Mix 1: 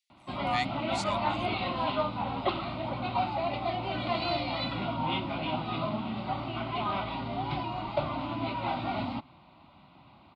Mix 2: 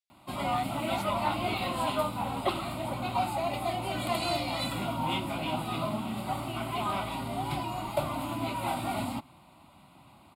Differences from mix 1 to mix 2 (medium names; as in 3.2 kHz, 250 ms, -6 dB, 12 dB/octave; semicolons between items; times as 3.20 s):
speech -12.0 dB; background: remove steep low-pass 4.6 kHz 36 dB/octave